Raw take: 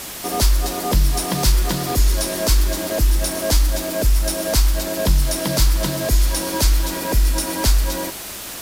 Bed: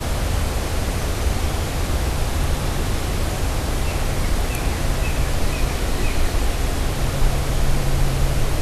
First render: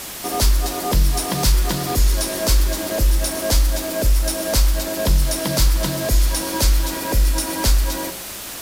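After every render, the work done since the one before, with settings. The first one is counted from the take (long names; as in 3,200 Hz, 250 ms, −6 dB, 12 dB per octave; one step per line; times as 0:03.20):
hum removal 60 Hz, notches 11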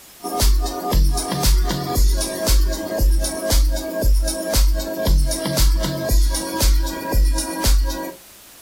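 noise reduction from a noise print 12 dB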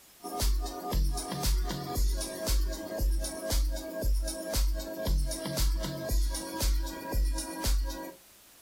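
level −12.5 dB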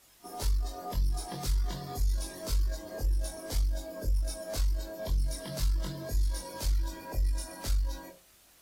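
tube saturation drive 22 dB, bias 0.35
multi-voice chorus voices 4, 0.29 Hz, delay 22 ms, depth 1.6 ms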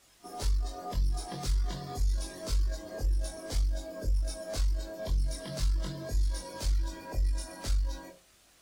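parametric band 13,000 Hz −13 dB 0.34 octaves
notch filter 910 Hz, Q 16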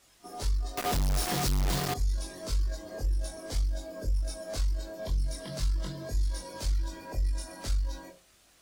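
0:00.77–0:01.94: log-companded quantiser 2 bits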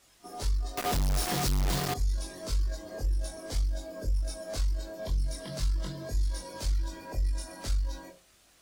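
no processing that can be heard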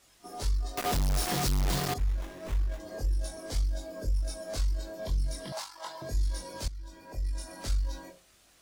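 0:01.98–0:02.80: windowed peak hold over 9 samples
0:05.52–0:06.02: high-pass with resonance 850 Hz, resonance Q 7.3
0:06.68–0:07.61: fade in, from −16.5 dB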